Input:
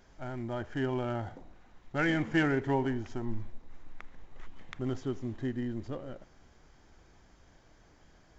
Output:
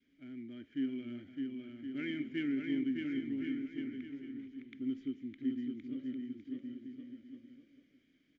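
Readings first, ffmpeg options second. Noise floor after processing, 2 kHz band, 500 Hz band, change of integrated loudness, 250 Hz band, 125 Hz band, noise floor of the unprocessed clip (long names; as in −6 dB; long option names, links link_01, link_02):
−72 dBFS, −11.5 dB, −13.5 dB, −6.0 dB, −1.0 dB, −17.0 dB, −61 dBFS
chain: -filter_complex "[0:a]adynamicequalizer=threshold=0.00562:dfrequency=710:dqfactor=0.85:tfrequency=710:tqfactor=0.85:attack=5:release=100:ratio=0.375:range=3:mode=cutabove:tftype=bell,asplit=3[link_01][link_02][link_03];[link_01]bandpass=frequency=270:width_type=q:width=8,volume=0dB[link_04];[link_02]bandpass=frequency=2290:width_type=q:width=8,volume=-6dB[link_05];[link_03]bandpass=frequency=3010:width_type=q:width=8,volume=-9dB[link_06];[link_04][link_05][link_06]amix=inputs=3:normalize=0,asplit=2[link_07][link_08];[link_08]aecho=0:1:610|1068|1411|1668|1861:0.631|0.398|0.251|0.158|0.1[link_09];[link_07][link_09]amix=inputs=2:normalize=0,volume=2dB"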